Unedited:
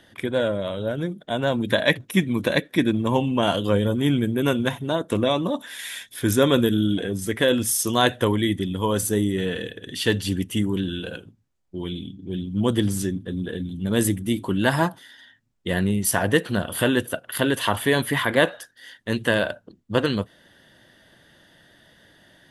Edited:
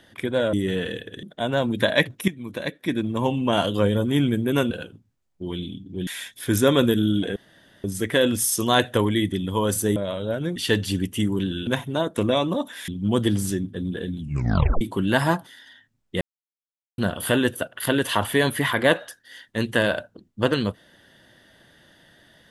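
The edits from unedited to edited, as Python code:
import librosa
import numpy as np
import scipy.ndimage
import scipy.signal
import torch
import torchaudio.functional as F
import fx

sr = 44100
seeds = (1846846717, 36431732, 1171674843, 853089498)

y = fx.edit(x, sr, fx.swap(start_s=0.53, length_s=0.6, other_s=9.23, other_length_s=0.7),
    fx.fade_in_from(start_s=2.18, length_s=1.28, floor_db=-15.0),
    fx.swap(start_s=4.61, length_s=1.21, other_s=11.04, other_length_s=1.36),
    fx.insert_room_tone(at_s=7.11, length_s=0.48),
    fx.tape_stop(start_s=13.7, length_s=0.63),
    fx.silence(start_s=15.73, length_s=0.77), tone=tone)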